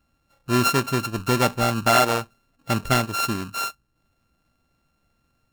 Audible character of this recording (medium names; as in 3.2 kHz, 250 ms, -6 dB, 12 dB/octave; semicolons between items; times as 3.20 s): a buzz of ramps at a fixed pitch in blocks of 32 samples; Nellymoser